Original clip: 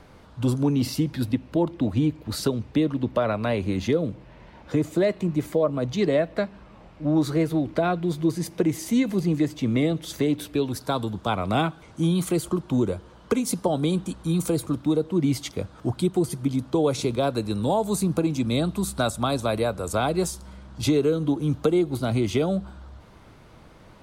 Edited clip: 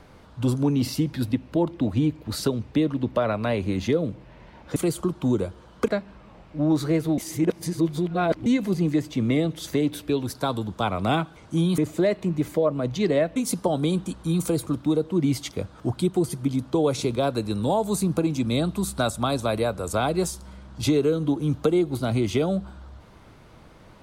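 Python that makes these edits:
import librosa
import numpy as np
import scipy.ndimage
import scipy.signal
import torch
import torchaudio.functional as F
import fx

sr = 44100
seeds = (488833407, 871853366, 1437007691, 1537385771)

y = fx.edit(x, sr, fx.swap(start_s=4.76, length_s=1.58, other_s=12.24, other_length_s=1.12),
    fx.reverse_span(start_s=7.64, length_s=1.28), tone=tone)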